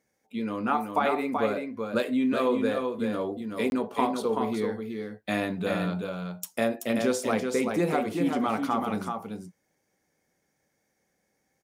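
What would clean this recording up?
repair the gap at 0:03.70, 21 ms
echo removal 381 ms −5 dB

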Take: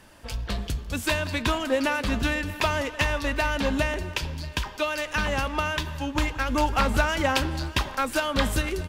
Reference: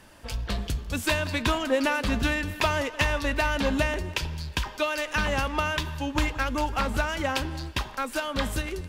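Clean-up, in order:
echo removal 628 ms −19.5 dB
level correction −4 dB, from 0:06.49

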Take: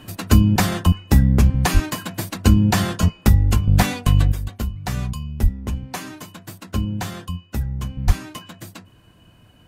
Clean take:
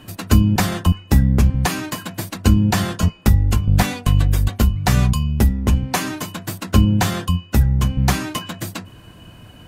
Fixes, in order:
high-pass at the plosives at 0:01.73/0:05.42/0:08.06
level correction +9.5 dB, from 0:04.32

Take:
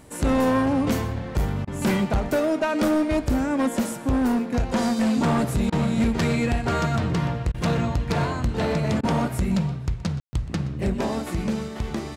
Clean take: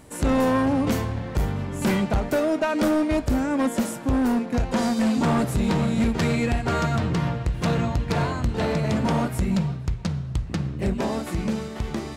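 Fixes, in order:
ambience match 0:10.20–0:10.33
repair the gap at 0:01.65/0:05.70/0:07.52/0:09.01, 22 ms
echo removal 123 ms −18 dB

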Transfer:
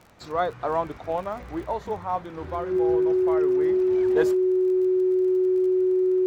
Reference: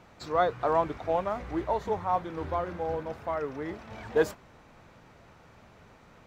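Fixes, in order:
click removal
notch filter 370 Hz, Q 30

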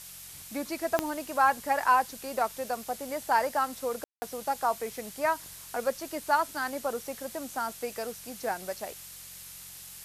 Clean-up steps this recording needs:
click removal
hum removal 45.2 Hz, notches 4
ambience match 0:04.04–0:04.22
noise reduction from a noise print 28 dB

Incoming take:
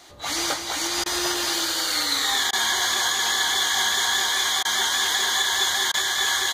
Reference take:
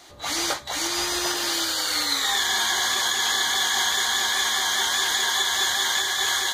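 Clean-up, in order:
clipped peaks rebuilt −13.5 dBFS
repair the gap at 0:01.04/0:02.51/0:04.63/0:05.92, 18 ms
echo removal 210 ms −7.5 dB

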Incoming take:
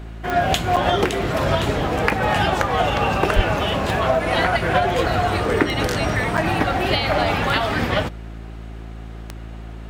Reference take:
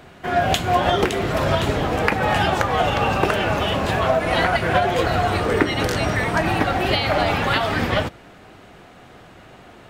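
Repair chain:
click removal
hum removal 55.3 Hz, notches 7
0:03.35–0:03.47: high-pass filter 140 Hz 24 dB per octave
repair the gap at 0:00.76/0:06.37, 7 ms

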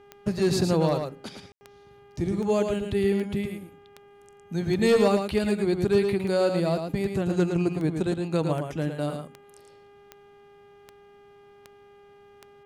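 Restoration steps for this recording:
click removal
hum removal 404.8 Hz, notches 8
ambience match 0:01.52–0:01.61
echo removal 111 ms −6 dB

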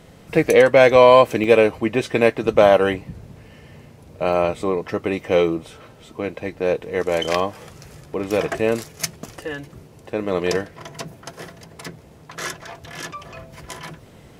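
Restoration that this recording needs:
repair the gap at 0:01.44/0:04.33, 1.3 ms

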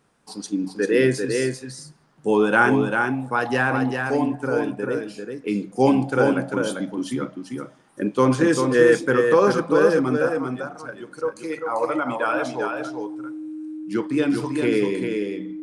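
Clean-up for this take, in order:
notch filter 310 Hz, Q 30
echo removal 394 ms −5 dB

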